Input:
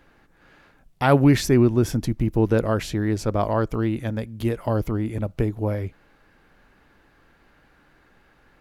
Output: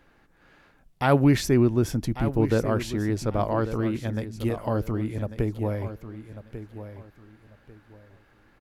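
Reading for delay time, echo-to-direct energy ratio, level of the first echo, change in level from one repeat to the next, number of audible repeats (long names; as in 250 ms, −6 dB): 1,144 ms, −11.5 dB, −12.0 dB, −12.0 dB, 2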